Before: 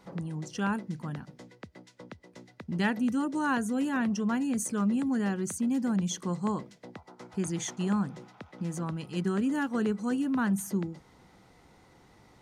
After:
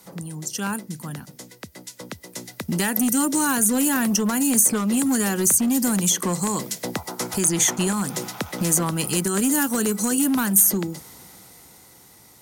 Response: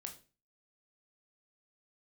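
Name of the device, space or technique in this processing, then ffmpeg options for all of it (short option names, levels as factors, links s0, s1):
FM broadcast chain: -filter_complex "[0:a]highpass=61,dynaudnorm=f=360:g=13:m=6.31,acrossover=split=270|2600|5500[s0][s1][s2][s3];[s0]acompressor=threshold=0.0398:ratio=4[s4];[s1]acompressor=threshold=0.0708:ratio=4[s5];[s2]acompressor=threshold=0.00562:ratio=4[s6];[s3]acompressor=threshold=0.01:ratio=4[s7];[s4][s5][s6][s7]amix=inputs=4:normalize=0,aemphasis=mode=production:type=50fm,alimiter=limit=0.158:level=0:latency=1:release=168,asoftclip=type=hard:threshold=0.106,lowpass=f=15000:w=0.5412,lowpass=f=15000:w=1.3066,aemphasis=mode=production:type=50fm,volume=1.33"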